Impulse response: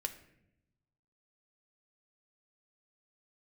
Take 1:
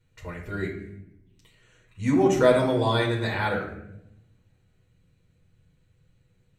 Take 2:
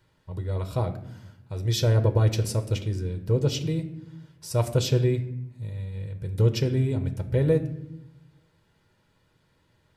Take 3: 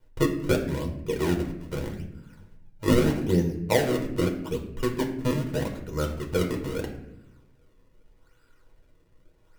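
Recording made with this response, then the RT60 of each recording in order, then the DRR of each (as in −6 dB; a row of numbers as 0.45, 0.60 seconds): 2; 0.80, 0.80, 0.80 seconds; −4.0, 6.5, 1.0 decibels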